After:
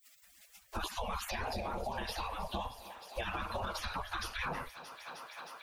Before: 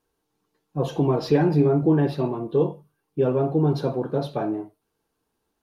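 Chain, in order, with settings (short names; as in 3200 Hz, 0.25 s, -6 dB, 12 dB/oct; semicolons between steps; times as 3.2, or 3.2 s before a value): 0.84–3.2 bell 1400 Hz -14.5 dB 1.8 oct; spectral gate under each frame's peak -30 dB weak; compressor, threshold -51 dBFS, peak gain reduction 9 dB; tilt -1.5 dB/oct; thinning echo 0.311 s, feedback 80%, high-pass 230 Hz, level -21.5 dB; harmonic-percussive split percussive +7 dB; limiter -42.5 dBFS, peak gain reduction 8.5 dB; three-band squash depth 70%; gain +14 dB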